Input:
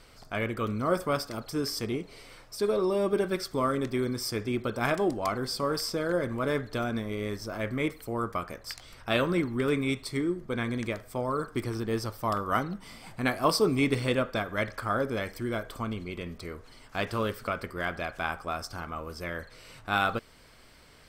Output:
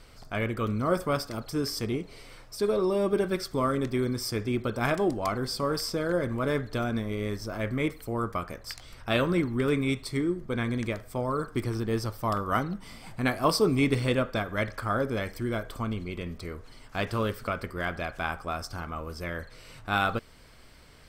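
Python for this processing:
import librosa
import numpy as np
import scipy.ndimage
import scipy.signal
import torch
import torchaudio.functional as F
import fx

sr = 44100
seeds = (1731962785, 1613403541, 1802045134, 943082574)

y = fx.low_shelf(x, sr, hz=160.0, db=5.5)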